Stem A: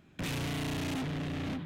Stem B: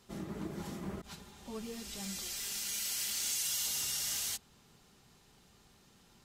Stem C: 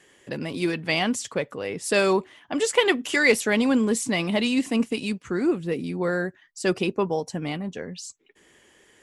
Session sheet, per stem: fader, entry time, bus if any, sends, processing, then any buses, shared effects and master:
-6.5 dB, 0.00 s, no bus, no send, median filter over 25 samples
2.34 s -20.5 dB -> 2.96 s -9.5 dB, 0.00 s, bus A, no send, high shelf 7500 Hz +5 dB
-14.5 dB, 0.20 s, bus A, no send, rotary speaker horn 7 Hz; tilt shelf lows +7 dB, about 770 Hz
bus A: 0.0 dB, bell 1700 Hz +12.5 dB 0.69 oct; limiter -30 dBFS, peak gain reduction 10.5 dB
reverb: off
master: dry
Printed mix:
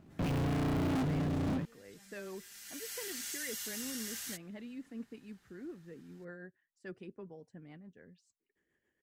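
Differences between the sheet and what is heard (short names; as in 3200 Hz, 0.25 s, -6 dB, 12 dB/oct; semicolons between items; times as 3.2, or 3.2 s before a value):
stem A -6.5 dB -> +3.0 dB; stem C -14.5 dB -> -26.0 dB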